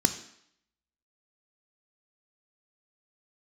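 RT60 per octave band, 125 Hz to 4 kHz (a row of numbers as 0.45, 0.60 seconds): 0.55, 0.70, 0.65, 0.75, 0.70, 0.70 seconds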